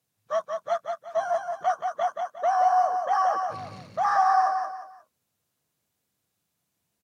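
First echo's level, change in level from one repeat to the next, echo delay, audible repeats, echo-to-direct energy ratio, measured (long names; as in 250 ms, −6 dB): −5.0 dB, −10.0 dB, 178 ms, 3, −4.5 dB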